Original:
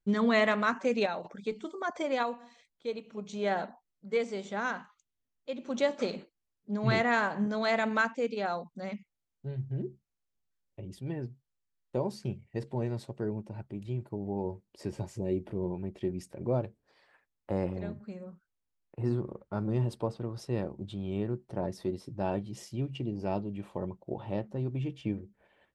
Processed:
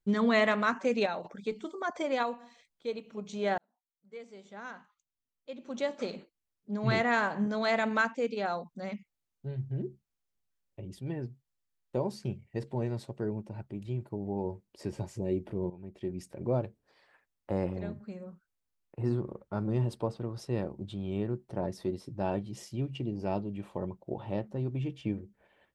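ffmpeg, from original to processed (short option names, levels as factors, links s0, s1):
-filter_complex "[0:a]asplit=3[s0][s1][s2];[s0]atrim=end=3.58,asetpts=PTS-STARTPTS,afade=t=out:st=3.576:d=0.004:c=hsin[s3];[s1]atrim=start=3.58:end=15.7,asetpts=PTS-STARTPTS,afade=t=in:d=3.69,afade=t=out:st=12.116:d=0.004:c=hsin:silence=0.188365[s4];[s2]atrim=start=15.7,asetpts=PTS-STARTPTS,afade=t=in:d=0.59:silence=0.188365[s5];[s3][s4][s5]concat=n=3:v=0:a=1"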